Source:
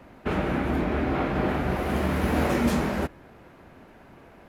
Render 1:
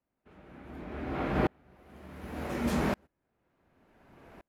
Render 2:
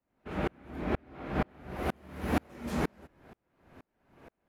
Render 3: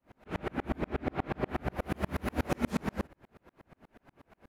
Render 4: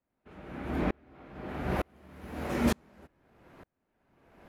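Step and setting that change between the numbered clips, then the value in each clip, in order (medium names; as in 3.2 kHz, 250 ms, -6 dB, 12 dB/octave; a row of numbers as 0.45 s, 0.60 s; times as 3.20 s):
sawtooth tremolo in dB, rate: 0.68 Hz, 2.1 Hz, 8.3 Hz, 1.1 Hz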